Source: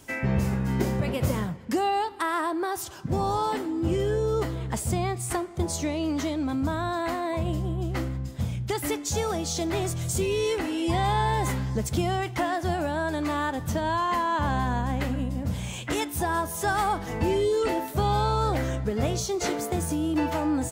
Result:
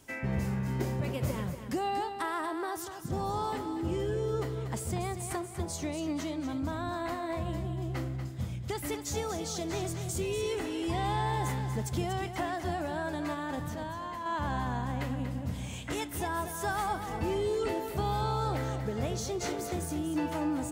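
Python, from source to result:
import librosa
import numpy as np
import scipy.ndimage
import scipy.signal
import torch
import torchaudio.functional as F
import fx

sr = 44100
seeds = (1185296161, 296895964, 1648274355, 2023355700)

y = fx.over_compress(x, sr, threshold_db=-31.0, ratio=-1.0, at=(13.33, 14.26))
y = fx.echo_feedback(y, sr, ms=238, feedback_pct=41, wet_db=-9)
y = y * librosa.db_to_amplitude(-7.0)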